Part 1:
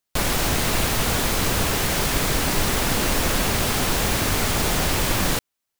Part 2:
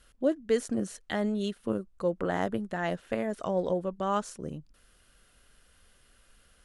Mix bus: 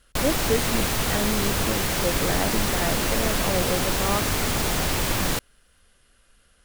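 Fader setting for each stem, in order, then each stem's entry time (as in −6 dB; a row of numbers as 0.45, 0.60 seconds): −2.5, +1.5 decibels; 0.00, 0.00 seconds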